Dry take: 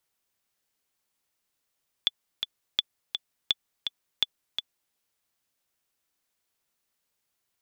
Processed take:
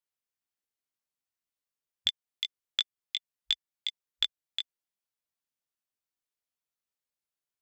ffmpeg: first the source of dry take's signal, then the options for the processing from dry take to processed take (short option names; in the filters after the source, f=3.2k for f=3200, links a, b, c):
-f lavfi -i "aevalsrc='pow(10,(-9-6.5*gte(mod(t,2*60/167),60/167))/20)*sin(2*PI*3460*mod(t,60/167))*exp(-6.91*mod(t,60/167)/0.03)':d=2.87:s=44100"
-filter_complex "[0:a]afwtdn=0.00708,asplit=2[a][b];[b]acompressor=threshold=-33dB:ratio=6,volume=-1.5dB[c];[a][c]amix=inputs=2:normalize=0,flanger=delay=18.5:depth=2.3:speed=2.8"